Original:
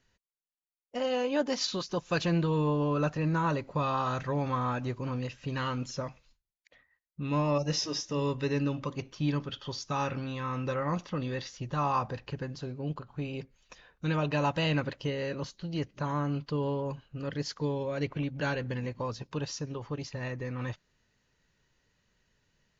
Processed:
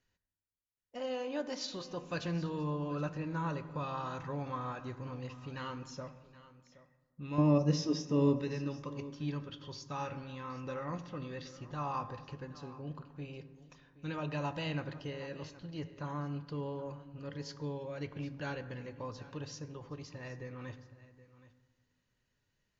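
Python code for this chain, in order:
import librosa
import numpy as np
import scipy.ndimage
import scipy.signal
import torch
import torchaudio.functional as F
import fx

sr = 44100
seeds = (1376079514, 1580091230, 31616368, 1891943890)

y = fx.peak_eq(x, sr, hz=250.0, db=14.0, octaves=2.3, at=(7.38, 8.42))
y = y + 10.0 ** (-17.5 / 20.0) * np.pad(y, (int(772 * sr / 1000.0), 0))[:len(y)]
y = fx.rev_fdn(y, sr, rt60_s=1.5, lf_ratio=1.4, hf_ratio=0.45, size_ms=57.0, drr_db=10.0)
y = y * librosa.db_to_amplitude(-9.0)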